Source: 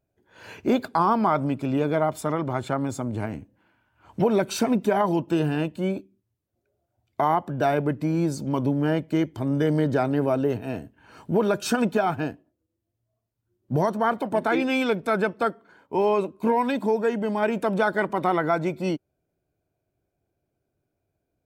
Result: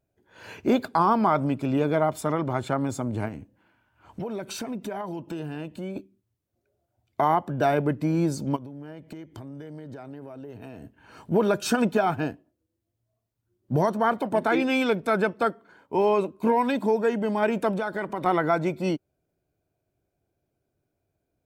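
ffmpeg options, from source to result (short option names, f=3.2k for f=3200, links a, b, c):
-filter_complex "[0:a]asettb=1/sr,asplit=3[a][b][c];[a]atrim=end=3.284[d];[b]atrim=start=3.28:end=5.96,asetpts=PTS-STARTPTS,afade=t=in:d=0.004:c=qsin,afade=t=out:st=2.676:d=0.004:c=qsin,acompressor=threshold=-33dB:ratio=3:attack=3.2:release=140:knee=1:detection=peak[e];[c]atrim=start=5.956[f];[d][e]acrossfade=d=0.004:c1=hsin:c2=qsin[g];[g][f]acrossfade=d=0.004:c1=qsin:c2=hsin,asplit=3[h][i][j];[h]afade=t=out:st=8.55:d=0.02[k];[i]acompressor=threshold=-36dB:ratio=16:attack=3.2:release=140:knee=1:detection=peak,afade=t=in:st=8.55:d=0.02,afade=t=out:st=11.3:d=0.02[l];[j]afade=t=in:st=11.3:d=0.02[m];[k][l][m]amix=inputs=3:normalize=0,asettb=1/sr,asplit=3[n][o][p];[n]atrim=end=17.714[q];[o]atrim=start=17.71:end=18.26,asetpts=PTS-STARTPTS,afade=t=in:d=0.004:c=qsin,afade=t=out:st=0.546:d=0.004:c=qsin,acompressor=threshold=-26dB:ratio=3:attack=3.2:release=140:knee=1:detection=peak[r];[p]atrim=start=18.256[s];[q][r]acrossfade=d=0.004:c1=hsin:c2=qsin[t];[t][s]acrossfade=d=0.004:c1=qsin:c2=hsin"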